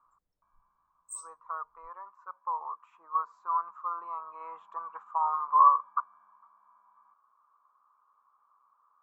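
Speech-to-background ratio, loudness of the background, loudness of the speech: 13.5 dB, −43.0 LKFS, −29.5 LKFS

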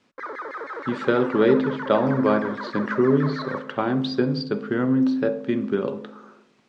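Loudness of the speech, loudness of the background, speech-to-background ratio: −23.0 LKFS, −33.5 LKFS, 10.5 dB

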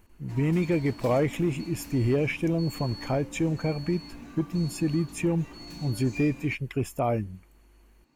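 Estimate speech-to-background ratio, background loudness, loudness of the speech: 15.0 dB, −43.0 LKFS, −28.0 LKFS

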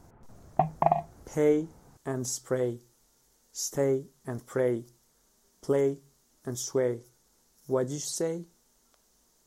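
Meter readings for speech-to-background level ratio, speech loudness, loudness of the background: −1.5 dB, −30.5 LKFS, −29.0 LKFS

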